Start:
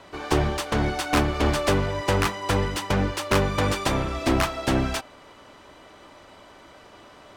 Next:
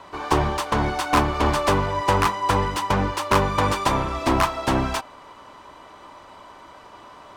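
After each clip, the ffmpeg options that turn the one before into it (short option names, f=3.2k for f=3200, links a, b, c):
-af "equalizer=f=1k:t=o:w=0.57:g=10"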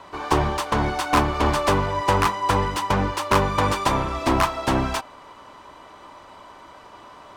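-af anull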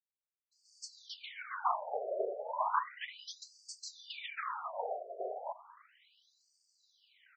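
-filter_complex "[0:a]afftfilt=real='hypot(re,im)*cos(2*PI*random(0))':imag='hypot(re,im)*sin(2*PI*random(1))':win_size=512:overlap=0.75,acrossover=split=210[a][b];[b]adelay=520[c];[a][c]amix=inputs=2:normalize=0,afftfilt=real='re*between(b*sr/1024,510*pow(6300/510,0.5+0.5*sin(2*PI*0.34*pts/sr))/1.41,510*pow(6300/510,0.5+0.5*sin(2*PI*0.34*pts/sr))*1.41)':imag='im*between(b*sr/1024,510*pow(6300/510,0.5+0.5*sin(2*PI*0.34*pts/sr))/1.41,510*pow(6300/510,0.5+0.5*sin(2*PI*0.34*pts/sr))*1.41)':win_size=1024:overlap=0.75,volume=-4dB"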